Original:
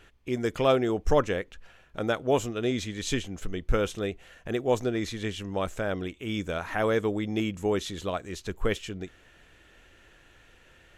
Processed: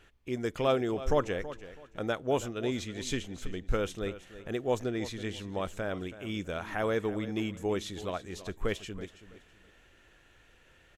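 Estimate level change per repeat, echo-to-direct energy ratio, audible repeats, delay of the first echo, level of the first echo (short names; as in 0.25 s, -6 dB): -11.5 dB, -14.0 dB, 2, 0.327 s, -14.5 dB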